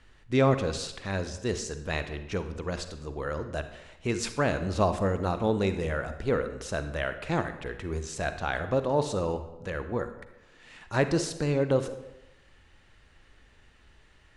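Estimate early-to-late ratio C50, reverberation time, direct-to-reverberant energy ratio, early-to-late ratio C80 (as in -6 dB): 10.0 dB, 0.95 s, 9.5 dB, 12.5 dB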